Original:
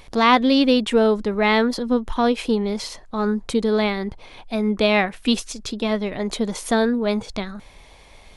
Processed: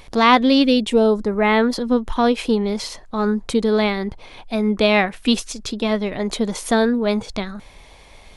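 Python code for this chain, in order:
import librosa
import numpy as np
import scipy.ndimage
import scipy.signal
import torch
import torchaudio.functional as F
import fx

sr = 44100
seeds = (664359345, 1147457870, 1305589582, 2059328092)

y = fx.peak_eq(x, sr, hz=fx.line((0.62, 820.0), (1.62, 6200.0)), db=-14.5, octaves=0.83, at=(0.62, 1.62), fade=0.02)
y = F.gain(torch.from_numpy(y), 2.0).numpy()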